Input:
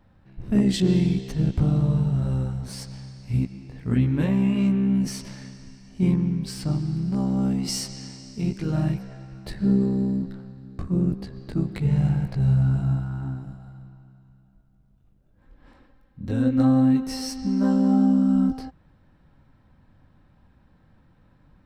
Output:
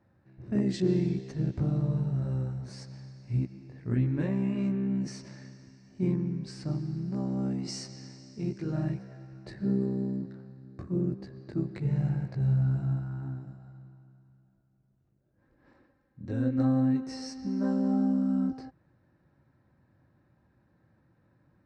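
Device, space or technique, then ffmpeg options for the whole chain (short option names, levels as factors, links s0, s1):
car door speaker: -af "highpass=83,equalizer=f=120:t=q:w=4:g=6,equalizer=f=350:t=q:w=4:g=8,equalizer=f=580:t=q:w=4:g=4,equalizer=f=1700:t=q:w=4:g=4,equalizer=f=3200:t=q:w=4:g=-9,lowpass=f=7300:w=0.5412,lowpass=f=7300:w=1.3066,volume=0.355"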